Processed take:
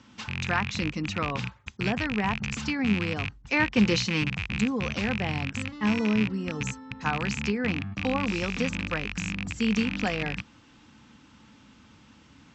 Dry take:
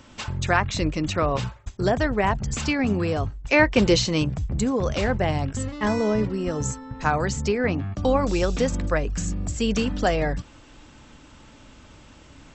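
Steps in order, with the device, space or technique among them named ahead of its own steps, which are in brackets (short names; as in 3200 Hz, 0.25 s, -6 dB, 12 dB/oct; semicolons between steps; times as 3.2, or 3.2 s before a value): car door speaker with a rattle (rattling part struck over -25 dBFS, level -13 dBFS; speaker cabinet 86–6700 Hz, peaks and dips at 210 Hz +7 dB, 380 Hz -5 dB, 610 Hz -10 dB); gain -5 dB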